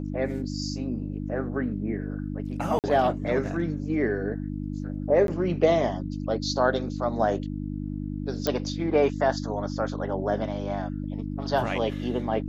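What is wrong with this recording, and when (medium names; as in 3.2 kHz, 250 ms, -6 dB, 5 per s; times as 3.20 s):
hum 50 Hz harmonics 6 -32 dBFS
2.79–2.84 s: dropout 48 ms
5.27–5.28 s: dropout 12 ms
8.47 s: pop -10 dBFS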